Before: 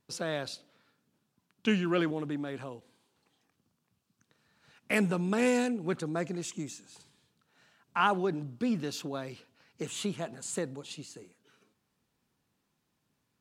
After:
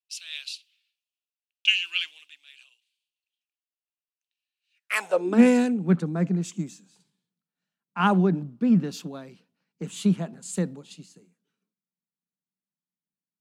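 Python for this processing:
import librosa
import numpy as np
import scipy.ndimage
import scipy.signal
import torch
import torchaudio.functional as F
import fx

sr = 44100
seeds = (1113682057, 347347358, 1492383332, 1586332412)

y = fx.filter_sweep_highpass(x, sr, from_hz=2700.0, to_hz=180.0, start_s=4.72, end_s=5.45, q=5.3)
y = fx.band_widen(y, sr, depth_pct=70)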